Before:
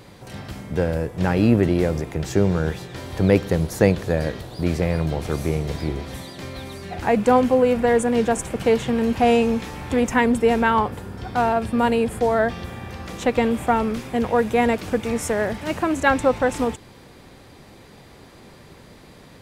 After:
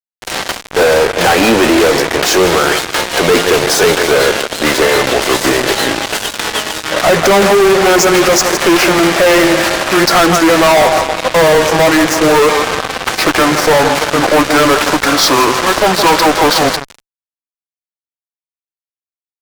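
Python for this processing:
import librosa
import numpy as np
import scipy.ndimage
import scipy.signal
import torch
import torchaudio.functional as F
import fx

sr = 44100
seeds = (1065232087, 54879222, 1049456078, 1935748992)

p1 = fx.pitch_glide(x, sr, semitones=-11.0, runs='starting unshifted')
p2 = fx.bandpass_edges(p1, sr, low_hz=590.0, high_hz=6500.0)
p3 = p2 + fx.echo_feedback(p2, sr, ms=162, feedback_pct=50, wet_db=-14.0, dry=0)
p4 = fx.fuzz(p3, sr, gain_db=41.0, gate_db=-40.0)
y = p4 * 10.0 ** (7.0 / 20.0)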